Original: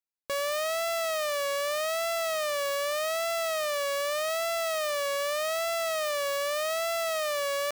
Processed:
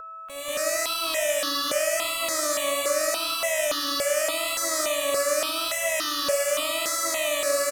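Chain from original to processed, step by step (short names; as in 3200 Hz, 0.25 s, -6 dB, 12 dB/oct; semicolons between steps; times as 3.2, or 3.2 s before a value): downsampling 32000 Hz; limiter -34 dBFS, peak gain reduction 11 dB; bell 7100 Hz +11 dB 1.6 oct; tapped delay 62/98/185/192/765 ms -8.5/-14.5/-4/-17.5/-11 dB; AGC gain up to 12.5 dB; de-hum 95.4 Hz, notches 18; whine 1300 Hz -33 dBFS; comb 2 ms, depth 54%; harmoniser -12 st -11 dB, +12 st -16 dB; step phaser 3.5 Hz 760–2300 Hz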